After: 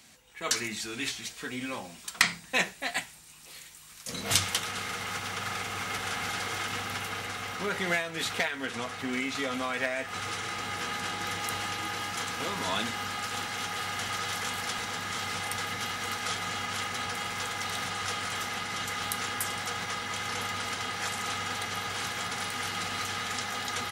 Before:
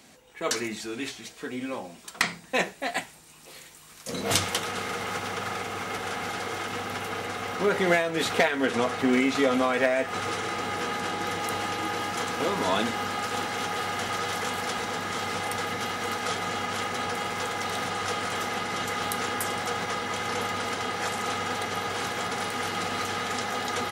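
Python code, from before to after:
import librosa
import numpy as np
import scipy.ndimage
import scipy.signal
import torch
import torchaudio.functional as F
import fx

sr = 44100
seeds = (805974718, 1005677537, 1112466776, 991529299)

y = fx.peak_eq(x, sr, hz=430.0, db=-10.5, octaves=2.6)
y = fx.rider(y, sr, range_db=10, speed_s=2.0)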